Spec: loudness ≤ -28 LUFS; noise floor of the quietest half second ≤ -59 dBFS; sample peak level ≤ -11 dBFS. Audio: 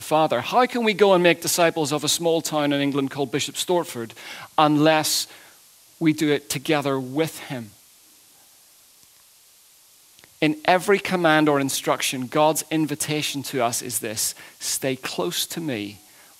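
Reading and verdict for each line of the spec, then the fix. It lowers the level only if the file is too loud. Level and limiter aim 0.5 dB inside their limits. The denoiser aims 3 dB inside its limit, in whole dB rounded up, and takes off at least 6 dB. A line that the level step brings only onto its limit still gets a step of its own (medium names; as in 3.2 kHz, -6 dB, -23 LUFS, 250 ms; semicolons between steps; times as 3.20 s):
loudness -21.5 LUFS: fail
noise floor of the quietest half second -54 dBFS: fail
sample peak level -2.0 dBFS: fail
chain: trim -7 dB; peak limiter -11.5 dBFS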